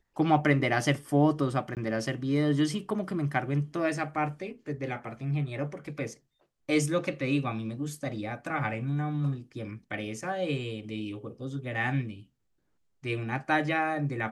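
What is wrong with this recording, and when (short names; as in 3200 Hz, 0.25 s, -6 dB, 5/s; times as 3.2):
1.75–1.77 gap 18 ms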